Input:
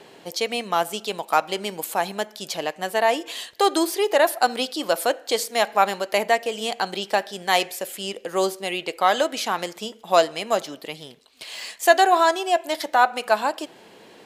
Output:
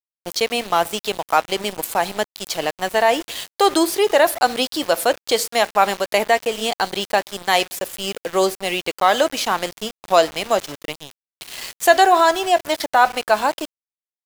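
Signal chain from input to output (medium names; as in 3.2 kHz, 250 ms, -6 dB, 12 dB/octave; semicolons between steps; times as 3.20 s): in parallel at -3 dB: peak limiter -12 dBFS, peak gain reduction 9 dB; on the sum: small samples zeroed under -28 dBFS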